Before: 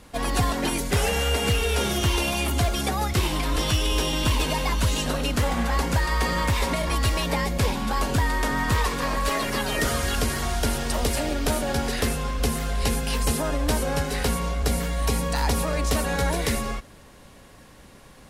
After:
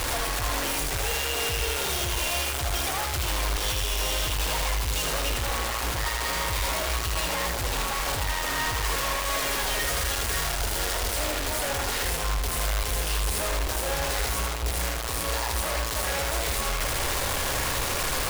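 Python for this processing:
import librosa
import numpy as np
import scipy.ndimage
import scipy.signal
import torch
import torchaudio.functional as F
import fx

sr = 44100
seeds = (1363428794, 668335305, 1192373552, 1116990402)

p1 = np.sign(x) * np.sqrt(np.mean(np.square(x)))
p2 = fx.peak_eq(p1, sr, hz=210.0, db=-14.0, octaves=1.1)
p3 = p2 + fx.echo_single(p2, sr, ms=79, db=-4.5, dry=0)
y = F.gain(torch.from_numpy(p3), -3.0).numpy()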